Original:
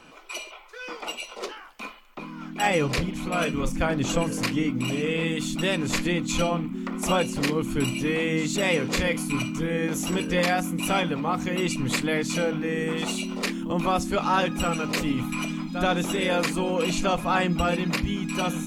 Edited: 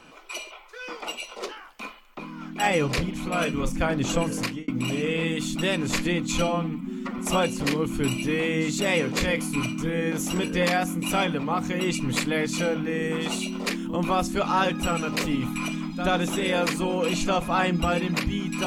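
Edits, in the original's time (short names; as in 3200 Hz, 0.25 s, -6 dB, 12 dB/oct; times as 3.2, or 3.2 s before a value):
4.39–4.68 fade out
6.48–6.95 stretch 1.5×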